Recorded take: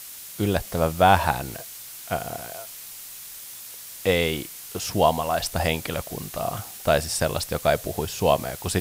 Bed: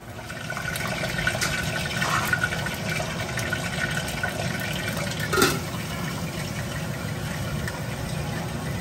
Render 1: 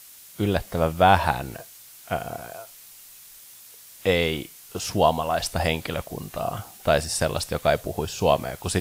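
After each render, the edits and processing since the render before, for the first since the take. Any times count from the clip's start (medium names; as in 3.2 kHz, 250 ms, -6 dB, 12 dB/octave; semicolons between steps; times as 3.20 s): noise print and reduce 7 dB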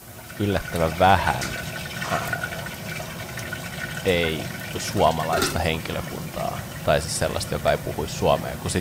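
add bed -4.5 dB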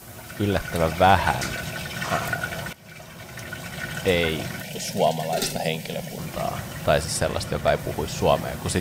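2.73–3.99 s: fade in, from -17 dB; 4.62–6.19 s: static phaser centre 320 Hz, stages 6; 7.19–7.79 s: treble shelf 6.4 kHz -6 dB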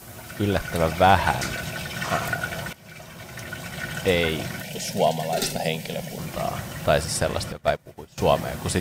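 7.52–8.18 s: upward expansion 2.5:1, over -33 dBFS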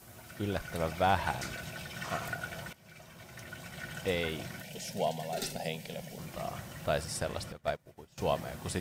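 trim -11 dB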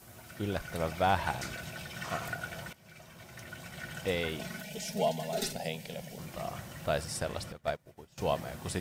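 4.39–5.53 s: comb 4.7 ms, depth 76%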